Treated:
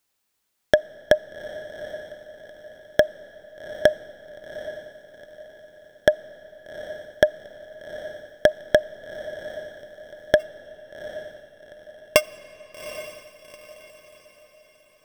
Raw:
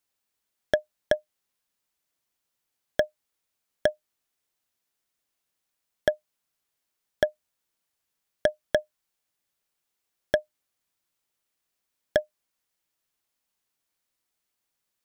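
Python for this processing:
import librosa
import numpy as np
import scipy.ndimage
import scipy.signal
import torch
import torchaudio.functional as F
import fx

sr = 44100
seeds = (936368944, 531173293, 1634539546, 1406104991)

y = fx.sample_sort(x, sr, block=16, at=(10.39, 12.2), fade=0.02)
y = fx.echo_diffused(y, sr, ms=794, feedback_pct=41, wet_db=-13)
y = fx.rev_freeverb(y, sr, rt60_s=3.8, hf_ratio=0.8, predelay_ms=5, drr_db=19.5)
y = y * librosa.db_to_amplitude(6.5)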